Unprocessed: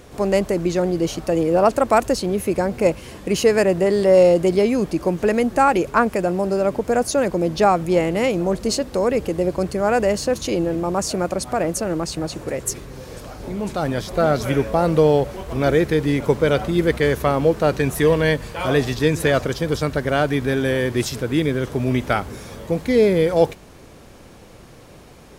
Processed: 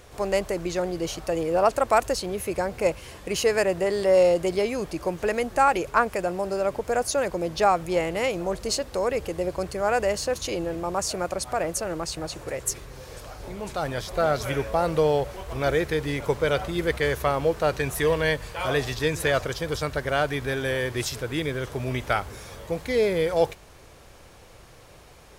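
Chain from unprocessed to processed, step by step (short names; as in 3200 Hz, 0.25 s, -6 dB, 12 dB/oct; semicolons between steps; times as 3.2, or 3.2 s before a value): bell 230 Hz -10.5 dB 1.5 oct; gain -2.5 dB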